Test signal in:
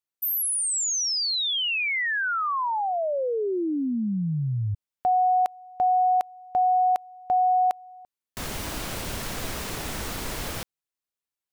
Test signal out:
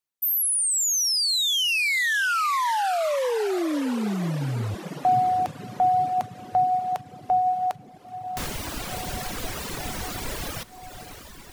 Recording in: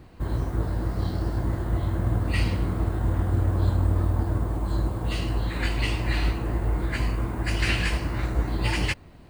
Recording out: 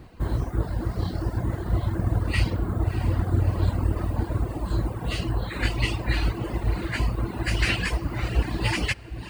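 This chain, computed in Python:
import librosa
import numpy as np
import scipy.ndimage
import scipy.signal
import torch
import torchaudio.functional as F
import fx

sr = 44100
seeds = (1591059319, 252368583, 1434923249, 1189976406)

y = fx.echo_diffused(x, sr, ms=649, feedback_pct=68, wet_db=-11.0)
y = fx.dereverb_blind(y, sr, rt60_s=1.3)
y = y * librosa.db_to_amplitude(2.5)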